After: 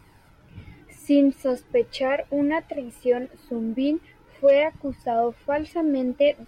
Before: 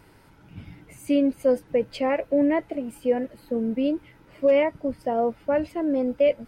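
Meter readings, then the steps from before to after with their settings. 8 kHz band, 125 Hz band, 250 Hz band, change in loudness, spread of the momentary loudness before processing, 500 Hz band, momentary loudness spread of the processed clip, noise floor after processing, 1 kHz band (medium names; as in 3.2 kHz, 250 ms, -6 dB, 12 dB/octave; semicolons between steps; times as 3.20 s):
no reading, -1.0 dB, +0.5 dB, +0.5 dB, 9 LU, +0.5 dB, 11 LU, -54 dBFS, +1.5 dB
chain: flange 0.41 Hz, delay 0.8 ms, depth 2.7 ms, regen +36%; dynamic bell 4.1 kHz, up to +6 dB, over -49 dBFS, Q 0.72; trim +3.5 dB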